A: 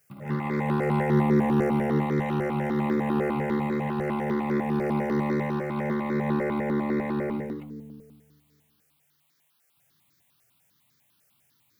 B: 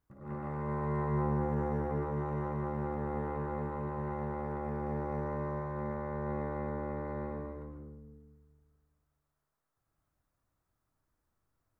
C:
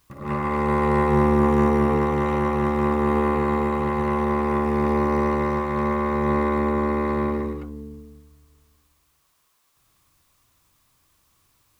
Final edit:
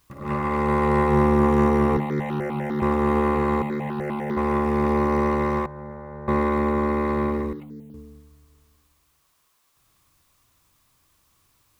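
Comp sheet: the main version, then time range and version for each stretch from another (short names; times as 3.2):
C
1.97–2.82 from A
3.62–4.37 from A
5.66–6.28 from B
7.53–7.94 from A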